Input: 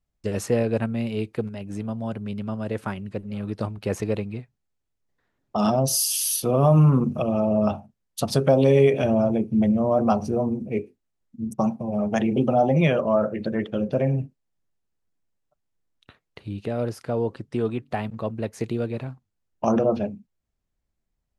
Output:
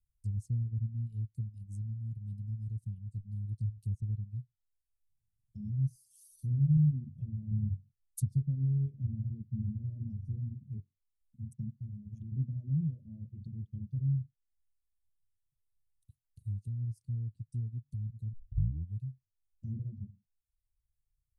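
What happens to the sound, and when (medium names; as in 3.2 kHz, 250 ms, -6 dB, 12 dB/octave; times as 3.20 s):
6.32–6.77 s: flutter echo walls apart 11.4 m, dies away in 0.63 s
7.51–8.25 s: bass shelf 380 Hz +5 dB
11.80–12.32 s: compression 3:1, threshold -24 dBFS
18.33 s: tape start 0.68 s
whole clip: reverb removal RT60 0.69 s; low-pass that closes with the level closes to 1.2 kHz, closed at -21.5 dBFS; Chebyshev band-stop 120–8900 Hz, order 3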